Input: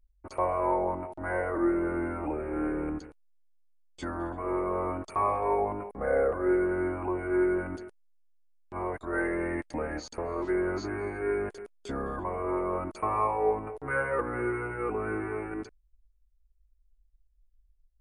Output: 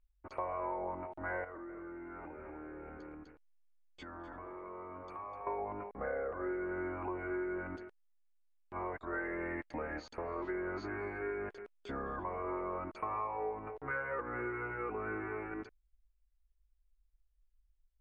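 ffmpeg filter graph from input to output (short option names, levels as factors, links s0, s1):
-filter_complex "[0:a]asettb=1/sr,asplit=3[s0][s1][s2];[s0]atrim=end=1.444[s3];[s1]atrim=start=1.44:end=5.47,asetpts=PTS-STARTPTS,afade=t=in:d=0.004:c=qsin,afade=t=out:st=4.026:d=0.004:c=qsin,aecho=1:1:251:0.531,atrim=end_sample=177723,acompressor=threshold=0.0112:ratio=6:attack=3.2:release=140:knee=1:detection=peak[s4];[s2]atrim=start=5.466[s5];[s3][s4]acrossfade=d=0.004:c1=hsin:c2=qsin[s6];[s6][s5]acrossfade=d=0.004:c1=qsin:c2=hsin,lowpass=2700,tiltshelf=f=970:g=-4,acompressor=threshold=0.0282:ratio=6,volume=0.668"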